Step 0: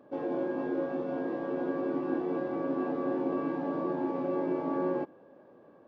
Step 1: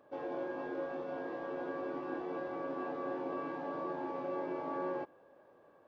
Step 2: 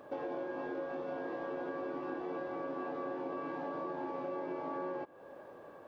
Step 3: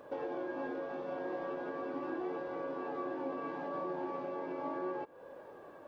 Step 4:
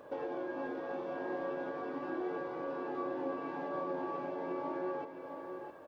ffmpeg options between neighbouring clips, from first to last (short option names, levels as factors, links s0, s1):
-af "equalizer=f=220:w=0.69:g=-12,volume=0.891"
-af "acompressor=threshold=0.00355:ratio=4,volume=3.35"
-af "flanger=delay=2:depth=3.4:regen=64:speed=0.38:shape=sinusoidal,volume=1.68"
-af "aecho=1:1:661:0.422"